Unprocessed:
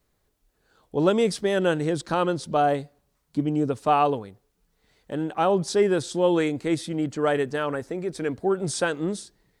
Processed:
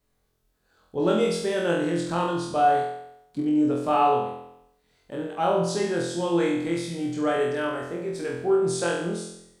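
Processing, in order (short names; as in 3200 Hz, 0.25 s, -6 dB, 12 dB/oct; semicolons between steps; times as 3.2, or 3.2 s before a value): flutter echo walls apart 4 m, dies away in 0.79 s; gain -5.5 dB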